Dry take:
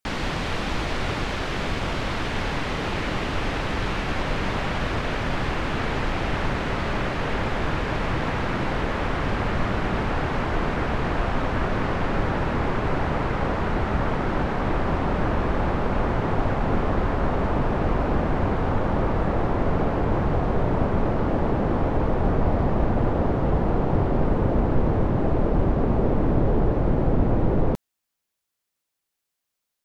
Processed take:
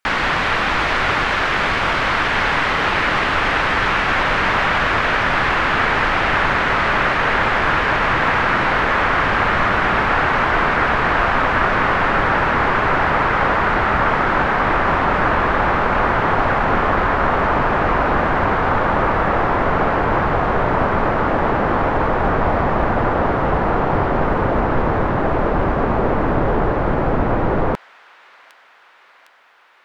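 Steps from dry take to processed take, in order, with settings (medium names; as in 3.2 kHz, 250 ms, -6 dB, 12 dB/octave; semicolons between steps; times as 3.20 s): peaking EQ 1.5 kHz +15 dB 2.6 oct; feedback echo behind a high-pass 757 ms, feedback 71%, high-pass 3.5 kHz, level -7 dB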